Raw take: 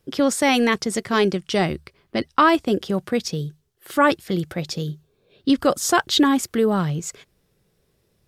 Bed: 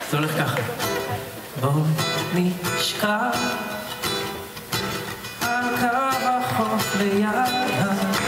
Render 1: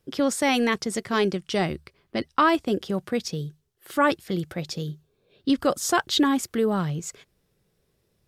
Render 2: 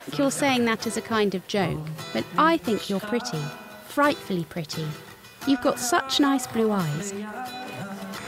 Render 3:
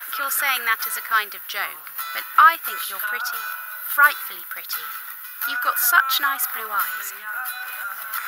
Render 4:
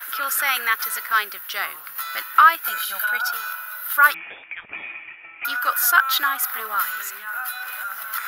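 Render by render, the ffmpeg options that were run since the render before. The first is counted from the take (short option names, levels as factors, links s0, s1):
-af "volume=0.631"
-filter_complex "[1:a]volume=0.224[s0];[0:a][s0]amix=inputs=2:normalize=0"
-af "highpass=f=1400:t=q:w=4.9,aexciter=amount=15.6:drive=4.5:freq=11000"
-filter_complex "[0:a]asettb=1/sr,asplit=3[s0][s1][s2];[s0]atrim=end=2.644[s3];[s1]atrim=start=2.64:end=3.33,asetpts=PTS-STARTPTS,afade=t=in:d=0.004:c=qsin,afade=t=out:st=0.686:d=0.004:c=qsin,aecho=1:1:1.3:0.66,atrim=end_sample=30429[s4];[s2]atrim=start=3.326[s5];[s3][s4]acrossfade=d=0.004:c1=hsin:c2=qsin[s6];[s6][s5]acrossfade=d=0.004:c1=qsin:c2=hsin,asettb=1/sr,asplit=3[s7][s8][s9];[s7]atrim=end=4.144[s10];[s8]atrim=start=4.14:end=5.45,asetpts=PTS-STARTPTS,afade=t=in:d=0.004:c=qsin,afade=t=out:st=1.306:d=0.004:c=qsin,lowpass=f=3200:t=q:w=0.5098,lowpass=f=3200:t=q:w=0.6013,lowpass=f=3200:t=q:w=0.9,lowpass=f=3200:t=q:w=2.563,afreqshift=-3800[s11];[s9]atrim=start=5.446[s12];[s10][s11]acrossfade=d=0.004:c1=hsin:c2=qsin[s13];[s13][s12]acrossfade=d=0.004:c1=qsin:c2=hsin"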